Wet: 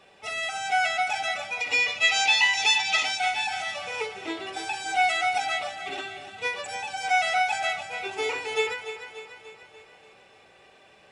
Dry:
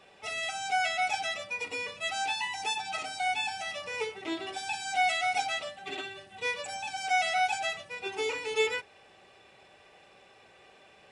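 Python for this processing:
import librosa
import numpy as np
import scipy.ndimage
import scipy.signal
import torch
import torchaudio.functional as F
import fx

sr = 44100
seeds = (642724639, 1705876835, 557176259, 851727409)

y = fx.spec_box(x, sr, start_s=1.61, length_s=1.56, low_hz=1900.0, high_hz=7400.0, gain_db=10)
y = fx.dynamic_eq(y, sr, hz=1300.0, q=0.81, threshold_db=-41.0, ratio=4.0, max_db=5)
y = fx.echo_feedback(y, sr, ms=292, feedback_pct=54, wet_db=-11.5)
y = fx.end_taper(y, sr, db_per_s=120.0)
y = y * librosa.db_to_amplitude(1.5)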